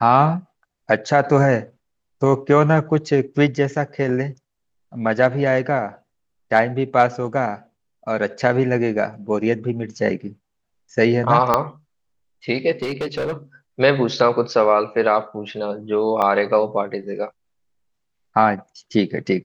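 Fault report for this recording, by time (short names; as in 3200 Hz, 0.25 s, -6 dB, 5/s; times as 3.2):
11.54 pop -3 dBFS
12.82–13.33 clipped -20.5 dBFS
16.22–16.23 gap 5.8 ms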